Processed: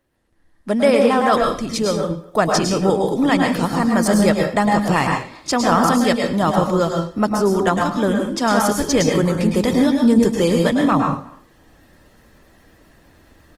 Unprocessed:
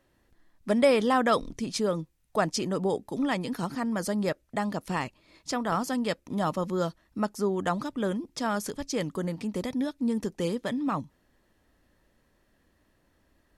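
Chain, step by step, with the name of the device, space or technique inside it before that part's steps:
speakerphone in a meeting room (convolution reverb RT60 0.40 s, pre-delay 101 ms, DRR 1.5 dB; far-end echo of a speakerphone 240 ms, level −23 dB; automatic gain control gain up to 16 dB; level −1 dB; Opus 24 kbit/s 48,000 Hz)

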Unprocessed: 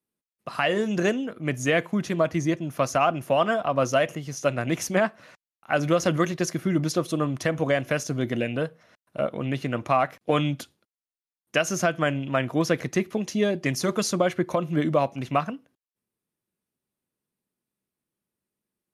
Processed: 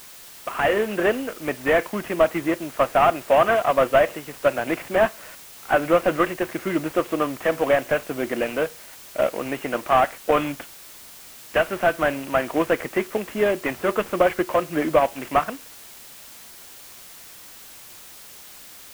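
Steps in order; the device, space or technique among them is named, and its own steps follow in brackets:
army field radio (band-pass filter 390–3,000 Hz; variable-slope delta modulation 16 kbit/s; white noise bed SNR 20 dB)
level +7 dB

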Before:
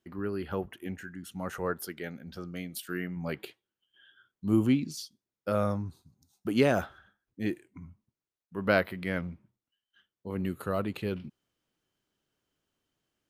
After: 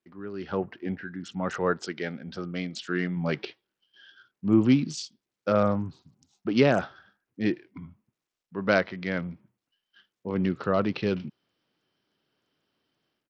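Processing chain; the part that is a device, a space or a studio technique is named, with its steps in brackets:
0:00.72–0:01.20: Bessel low-pass filter 1,900 Hz, order 6
dynamic equaliser 140 Hz, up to +4 dB, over −44 dBFS, Q 2.6
Bluetooth headset (high-pass filter 130 Hz 12 dB per octave; automatic gain control gain up to 13 dB; downsampling to 16,000 Hz; level −6.5 dB; SBC 64 kbit/s 44,100 Hz)

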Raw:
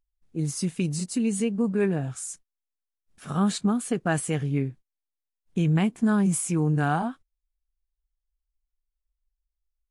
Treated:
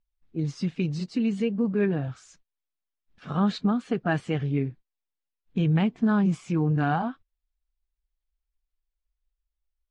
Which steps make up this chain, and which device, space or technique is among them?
clip after many re-uploads (low-pass filter 4,600 Hz 24 dB per octave; spectral magnitudes quantised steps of 15 dB)

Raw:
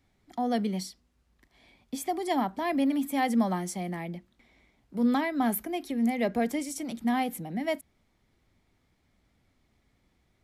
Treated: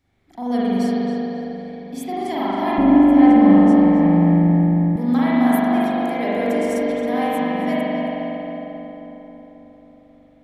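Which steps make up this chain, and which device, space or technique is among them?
dub delay into a spring reverb (feedback echo with a low-pass in the loop 270 ms, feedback 69%, low-pass 2,000 Hz, level −3 dB; spring reverb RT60 2.8 s, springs 41 ms, chirp 30 ms, DRR −8.5 dB)
0:02.78–0:04.96: RIAA equalisation playback
level −1.5 dB

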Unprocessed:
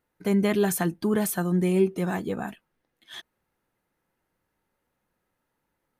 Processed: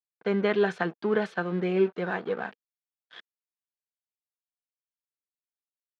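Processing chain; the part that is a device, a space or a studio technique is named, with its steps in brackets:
blown loudspeaker (dead-zone distortion −41 dBFS; loudspeaker in its box 240–4,000 Hz, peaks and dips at 290 Hz −7 dB, 470 Hz +6 dB, 1,500 Hz +7 dB)

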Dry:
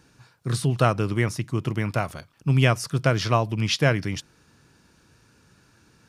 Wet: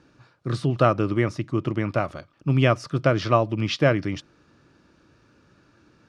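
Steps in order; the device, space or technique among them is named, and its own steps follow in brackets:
inside a cardboard box (low-pass filter 4,600 Hz 12 dB per octave; hollow resonant body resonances 320/570/1,200 Hz, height 8 dB, ringing for 25 ms)
level −2 dB

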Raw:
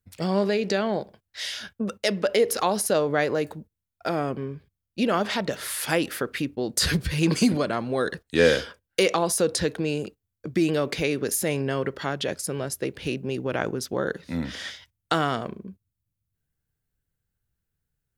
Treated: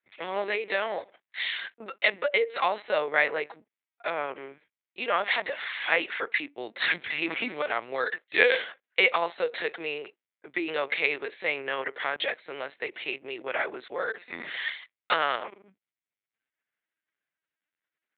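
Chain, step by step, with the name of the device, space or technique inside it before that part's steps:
talking toy (linear-prediction vocoder at 8 kHz pitch kept; high-pass filter 610 Hz 12 dB per octave; parametric band 2,100 Hz +9 dB 0.55 octaves)

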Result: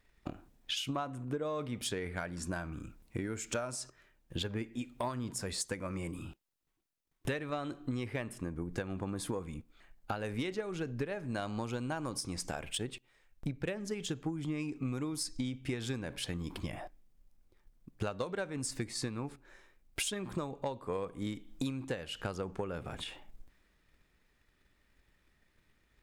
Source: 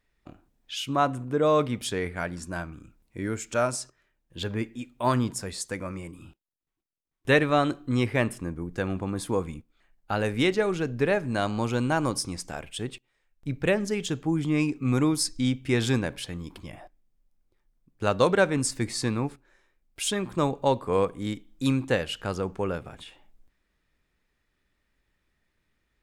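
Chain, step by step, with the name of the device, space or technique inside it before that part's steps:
drum-bus smash (transient designer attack +8 dB, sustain +3 dB; downward compressor 8 to 1, threshold −35 dBFS, peak gain reduction 24 dB; soft clipping −25.5 dBFS, distortion −22 dB)
level +2 dB

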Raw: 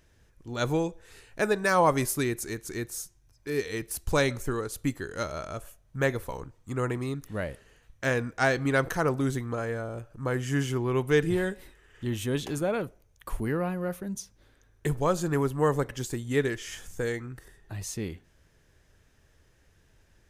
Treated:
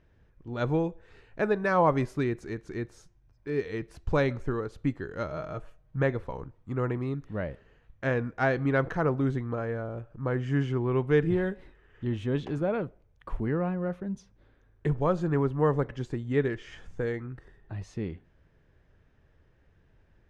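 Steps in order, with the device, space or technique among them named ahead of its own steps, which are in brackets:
phone in a pocket (low-pass filter 3,600 Hz 12 dB per octave; parametric band 160 Hz +2 dB; high-shelf EQ 2,200 Hz −9 dB)
0:05.31–0:06.03: comb filter 6.4 ms, depth 51%

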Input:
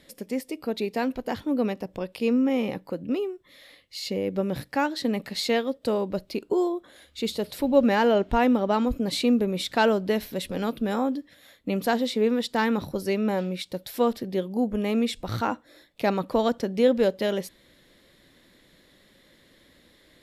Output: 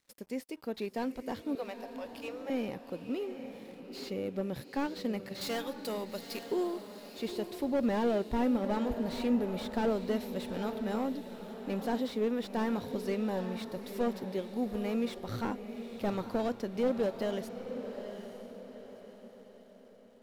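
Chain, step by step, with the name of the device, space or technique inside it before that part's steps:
high-shelf EQ 4,300 Hz +3 dB
0:01.55–0:02.50: Butterworth high-pass 490 Hz 96 dB per octave
early transistor amplifier (dead-zone distortion −52.5 dBFS; slew-rate limiting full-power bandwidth 63 Hz)
0:05.41–0:06.45: spectral tilt +3.5 dB per octave
feedback delay with all-pass diffusion 877 ms, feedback 43%, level −9 dB
level −8 dB

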